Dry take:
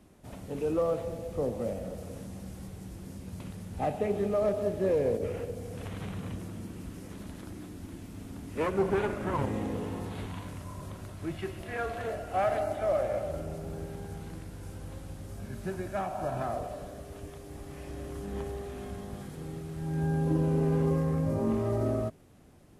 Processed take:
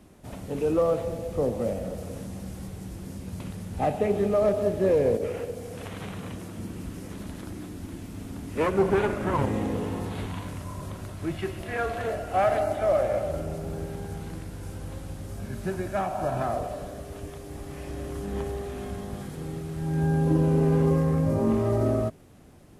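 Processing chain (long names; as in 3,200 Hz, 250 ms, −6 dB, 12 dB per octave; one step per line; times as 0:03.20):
0:05.17–0:06.58: low-shelf EQ 200 Hz −7.5 dB
level +5 dB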